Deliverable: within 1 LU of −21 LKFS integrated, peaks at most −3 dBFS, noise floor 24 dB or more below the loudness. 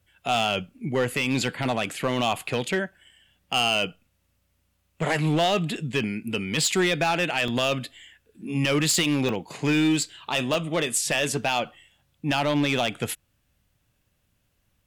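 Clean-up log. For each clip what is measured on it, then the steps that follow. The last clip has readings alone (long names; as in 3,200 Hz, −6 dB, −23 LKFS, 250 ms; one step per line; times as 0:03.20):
share of clipped samples 1.3%; peaks flattened at −16.5 dBFS; number of dropouts 3; longest dropout 1.9 ms; integrated loudness −25.0 LKFS; sample peak −16.5 dBFS; target loudness −21.0 LKFS
→ clipped peaks rebuilt −16.5 dBFS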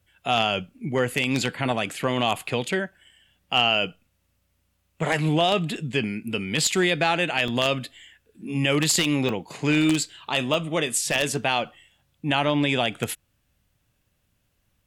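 share of clipped samples 0.0%; number of dropouts 3; longest dropout 1.9 ms
→ repair the gap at 0:07.48/0:09.29/0:10.54, 1.9 ms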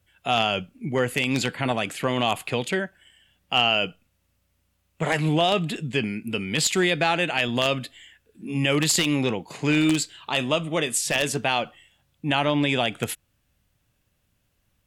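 number of dropouts 0; integrated loudness −24.0 LKFS; sample peak −7.5 dBFS; target loudness −21.0 LKFS
→ level +3 dB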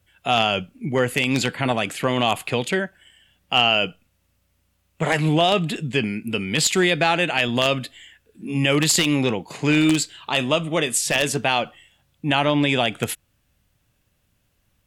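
integrated loudness −21.0 LKFS; sample peak −4.5 dBFS; background noise floor −68 dBFS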